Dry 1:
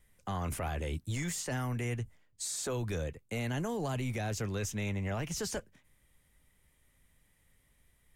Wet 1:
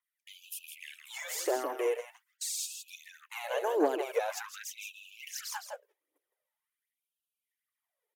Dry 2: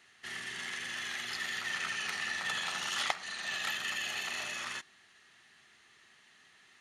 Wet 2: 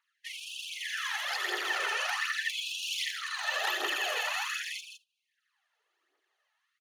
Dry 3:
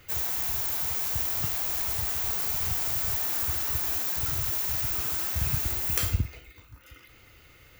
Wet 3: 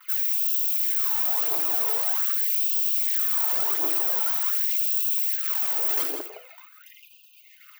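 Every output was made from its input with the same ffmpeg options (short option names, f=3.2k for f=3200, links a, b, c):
-filter_complex "[0:a]aphaser=in_gain=1:out_gain=1:delay=2.4:decay=0.61:speed=1.3:type=triangular,equalizer=f=250:t=o:w=1:g=5,equalizer=f=500:t=o:w=1:g=3,equalizer=f=2k:t=o:w=1:g=-7,equalizer=f=4k:t=o:w=1:g=-5,equalizer=f=8k:t=o:w=1:g=-11,asplit=2[a][b];[b]acompressor=threshold=-36dB:ratio=6,volume=0dB[c];[a][c]amix=inputs=2:normalize=0,asoftclip=type=tanh:threshold=-21dB,agate=range=-22dB:threshold=-46dB:ratio=16:detection=peak,aecho=1:1:162:0.398,afftfilt=real='re*gte(b*sr/1024,290*pow(2500/290,0.5+0.5*sin(2*PI*0.45*pts/sr)))':imag='im*gte(b*sr/1024,290*pow(2500/290,0.5+0.5*sin(2*PI*0.45*pts/sr)))':win_size=1024:overlap=0.75,volume=3.5dB"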